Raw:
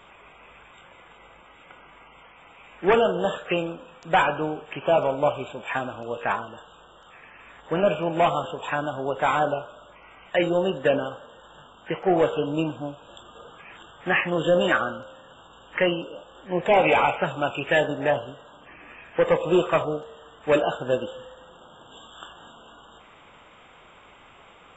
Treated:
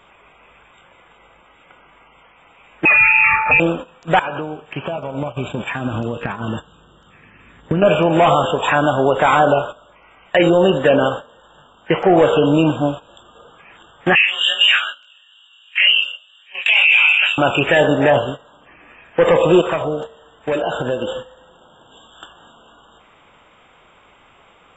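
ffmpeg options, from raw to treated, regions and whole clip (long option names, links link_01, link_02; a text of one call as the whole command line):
ffmpeg -i in.wav -filter_complex "[0:a]asettb=1/sr,asplit=3[link_01][link_02][link_03];[link_01]atrim=end=2.854[link_04];[link_02]atrim=start=2.85:end=3.6,asetpts=PTS-STARTPTS,afade=type=in:duration=0.004:curve=qsin,afade=type=out:start_time=0.746:duration=0.004:curve=qsin,lowpass=frequency=2500:width_type=q:width=0.5098,lowpass=frequency=2500:width_type=q:width=0.6013,lowpass=frequency=2500:width_type=q:width=0.9,lowpass=frequency=2500:width_type=q:width=2.563,afreqshift=-2900,aecho=1:1:1.6:0.95,atrim=end_sample=33075,aeval=exprs='val(0)+0.0251*sin(2*PI*880*n/s)':channel_layout=same[link_05];[link_03]atrim=start=3.596[link_06];[link_04][link_05]acrossfade=duration=0.004:curve1=hsin:curve2=qsin[link_07];[link_07][link_06]acrossfade=duration=0.004:curve1=qsin:curve2=hsin,asettb=1/sr,asplit=3[link_08][link_09][link_10];[link_08]atrim=end=4.194[link_11];[link_09]atrim=start=4.19:end=7.82,asetpts=PTS-STARTPTS,afade=type=in:duration=0.004:curve=qsin,afade=type=out:start_time=3.626:duration=0.004:curve=qsin,acompressor=threshold=-34dB:ratio=12:attack=3.2:release=140:knee=1:detection=peak,highpass=frequency=130:poles=1,asubboost=boost=9.5:cutoff=240[link_12];[link_10]atrim=start=7.816[link_13];[link_11][link_12]acrossfade=duration=0.004:curve1=hsin:curve2=qsin[link_14];[link_14][link_13]acrossfade=duration=0.004:curve1=qsin:curve2=hsin,asettb=1/sr,asplit=3[link_15][link_16][link_17];[link_15]atrim=end=14.154[link_18];[link_16]atrim=start=14.15:end=17.38,asetpts=PTS-STARTPTS,afade=type=in:duration=0.004:curve=qsin,afade=type=out:start_time=3.226:duration=0.004:curve=qsin,afreqshift=29,flanger=delay=18.5:depth=2.2:speed=2.2,highpass=frequency=2600:width_type=q:width=6.6[link_19];[link_17]atrim=start=17.376[link_20];[link_18][link_19]acrossfade=duration=0.004:curve1=hsin:curve2=qsin[link_21];[link_21][link_20]acrossfade=duration=0.004:curve1=qsin:curve2=hsin,asettb=1/sr,asplit=3[link_22][link_23][link_24];[link_22]atrim=end=19.614[link_25];[link_23]atrim=start=19.61:end=22.26,asetpts=PTS-STARTPTS,afade=type=in:duration=0.004:curve=qsin,afade=type=out:start_time=2.646:duration=0.004:curve=qsin,bandreject=frequency=1200:width=15,acompressor=threshold=-32dB:ratio=5:attack=3.2:release=140:knee=1:detection=peak[link_26];[link_24]atrim=start=22.256[link_27];[link_25][link_26]acrossfade=duration=0.004:curve1=hsin:curve2=qsin[link_28];[link_28][link_27]acrossfade=duration=0.004:curve1=qsin:curve2=hsin,agate=range=-14dB:threshold=-39dB:ratio=16:detection=peak,alimiter=level_in=18dB:limit=-1dB:release=50:level=0:latency=1,volume=-3.5dB" out.wav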